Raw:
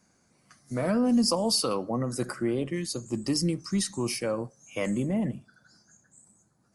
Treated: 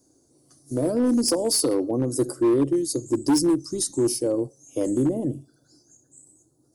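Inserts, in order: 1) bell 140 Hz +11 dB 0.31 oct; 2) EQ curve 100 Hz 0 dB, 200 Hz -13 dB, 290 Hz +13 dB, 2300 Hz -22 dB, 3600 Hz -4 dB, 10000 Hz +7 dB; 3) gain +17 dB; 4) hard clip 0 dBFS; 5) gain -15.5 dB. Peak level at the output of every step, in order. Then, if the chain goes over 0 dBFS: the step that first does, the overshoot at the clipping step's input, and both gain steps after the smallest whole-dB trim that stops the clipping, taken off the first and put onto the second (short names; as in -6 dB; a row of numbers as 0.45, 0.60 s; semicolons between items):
-14.0, -7.5, +9.5, 0.0, -15.5 dBFS; step 3, 9.5 dB; step 3 +7 dB, step 5 -5.5 dB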